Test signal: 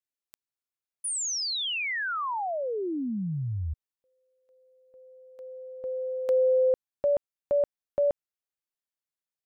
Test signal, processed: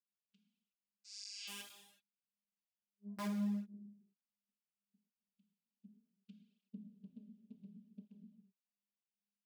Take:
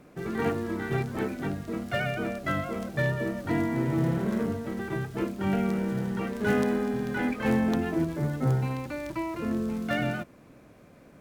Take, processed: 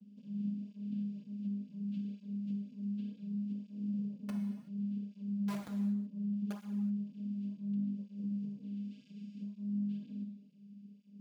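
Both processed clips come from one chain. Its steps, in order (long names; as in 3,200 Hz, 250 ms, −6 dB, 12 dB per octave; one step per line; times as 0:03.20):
linear-phase brick-wall band-stop 220–3,500 Hz
channel vocoder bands 8, saw 203 Hz
bass and treble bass −12 dB, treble −14 dB
wrap-around overflow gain 29.5 dB
high-pass filter 130 Hz
downward compressor 3 to 1, threshold −56 dBFS
low-shelf EQ 250 Hz +8.5 dB
reverb whose tail is shaped and stops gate 400 ms falling, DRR 2 dB
through-zero flanger with one copy inverted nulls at 0.68 Hz, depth 7.1 ms
level +8.5 dB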